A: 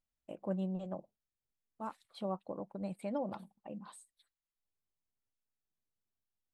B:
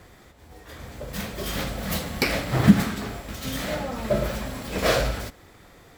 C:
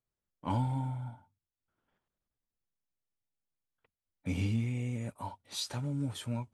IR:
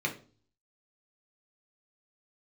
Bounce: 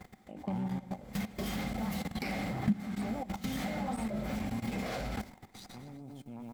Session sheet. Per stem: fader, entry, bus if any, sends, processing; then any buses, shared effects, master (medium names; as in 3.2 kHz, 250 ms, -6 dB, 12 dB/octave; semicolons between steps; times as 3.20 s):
0.0 dB, 0.00 s, no send, no echo send, hum notches 50/100/150/200/250/300 Hz; level flattener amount 50%
-2.0 dB, 0.00 s, no send, no echo send, treble shelf 12 kHz -2.5 dB
-7.5 dB, 0.00 s, no send, echo send -7.5 dB, Chebyshev shaper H 2 -15 dB, 5 -18 dB, 6 -34 dB, 7 -14 dB, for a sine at -20 dBFS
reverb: none
echo: feedback delay 123 ms, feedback 47%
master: level held to a coarse grid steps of 17 dB; small resonant body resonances 210/770/2100 Hz, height 12 dB, ringing for 40 ms; compression 2.5:1, threshold -35 dBFS, peak gain reduction 19 dB